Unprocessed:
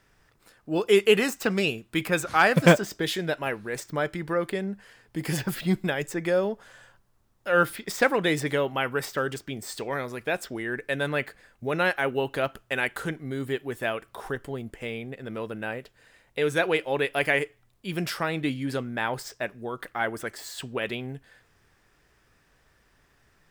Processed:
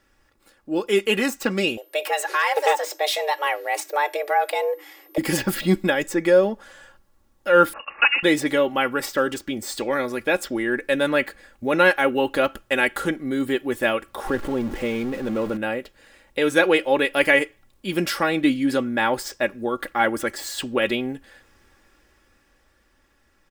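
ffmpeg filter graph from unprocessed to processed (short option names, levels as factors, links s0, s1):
-filter_complex "[0:a]asettb=1/sr,asplit=3[s0][s1][s2];[s0]atrim=end=1.774[s3];[s1]atrim=start=1.77:end=5.18,asetpts=PTS-STARTPTS,afade=t=in:d=0.004:c=qsin,afade=t=out:st=3.406:d=0.004:c=qsin,acompressor=threshold=0.0631:ratio=2.5:attack=3.2:release=140:knee=1:detection=peak,afreqshift=290,aeval=exprs='val(0)+0.00251*sin(2*PI*13000*n/s)':c=same[s4];[s2]atrim=start=5.176[s5];[s3][s4]acrossfade=d=0.004:c1=hsin:c2=qsin[s6];[s6][s5]acrossfade=d=0.004:c1=qsin:c2=hsin,asettb=1/sr,asplit=3[s7][s8][s9];[s7]atrim=end=7.734[s10];[s8]atrim=start=7.73:end=8.23,asetpts=PTS-STARTPTS,afade=t=in:d=0.004:c=qsin,afade=t=out:st=0.496:d=0.004:c=qsin,highpass=f=250:w=0.5412,highpass=f=250:w=1.3066,lowpass=f=2600:t=q:w=0.5098,lowpass=f=2600:t=q:w=0.6013,lowpass=f=2600:t=q:w=0.9,lowpass=f=2600:t=q:w=2.563,afreqshift=-3100[s11];[s9]atrim=start=8.226[s12];[s10][s11]acrossfade=d=0.004:c1=hsin:c2=qsin[s13];[s13][s12]acrossfade=d=0.004:c1=qsin:c2=hsin,asettb=1/sr,asplit=3[s14][s15][s16];[s14]atrim=end=14.274[s17];[s15]atrim=start=14.27:end=15.57,asetpts=PTS-STARTPTS,afade=t=in:d=0.004:c=qsin,afade=t=out:st=1.296:d=0.004:c=qsin,aeval=exprs='val(0)+0.5*0.0178*sgn(val(0))':c=same,highshelf=f=2300:g=-9.5[s18];[s16]atrim=start=15.566[s19];[s17][s18]acrossfade=d=0.004:c1=hsin:c2=qsin[s20];[s20][s19]acrossfade=d=0.004:c1=qsin:c2=hsin,equalizer=f=390:t=o:w=0.29:g=6.5,aecho=1:1:3.6:0.67,dynaudnorm=f=160:g=21:m=2.66,volume=0.841"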